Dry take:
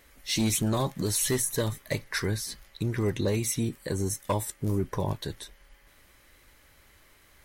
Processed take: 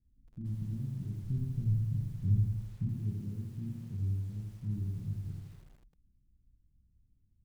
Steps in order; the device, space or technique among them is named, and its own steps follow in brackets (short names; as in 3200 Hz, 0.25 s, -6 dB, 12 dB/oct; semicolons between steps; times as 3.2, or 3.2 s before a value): club heard from the street (limiter -21 dBFS, peak gain reduction 5 dB; LPF 190 Hz 24 dB/oct; reverb RT60 0.65 s, pre-delay 24 ms, DRR 0 dB); 1.22–2.89 tone controls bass +9 dB, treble -7 dB; lo-fi delay 82 ms, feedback 55%, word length 9-bit, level -4 dB; gain -7.5 dB